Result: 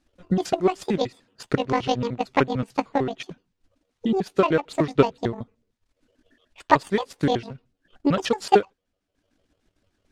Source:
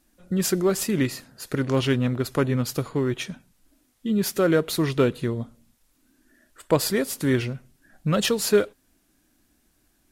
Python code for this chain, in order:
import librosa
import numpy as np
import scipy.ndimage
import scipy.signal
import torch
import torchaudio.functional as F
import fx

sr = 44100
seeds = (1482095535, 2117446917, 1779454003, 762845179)

y = fx.pitch_trill(x, sr, semitones=11.0, every_ms=75)
y = fx.transient(y, sr, attack_db=9, sustain_db=-9)
y = scipy.signal.sosfilt(scipy.signal.butter(2, 5200.0, 'lowpass', fs=sr, output='sos'), y)
y = y * librosa.db_to_amplitude(-3.0)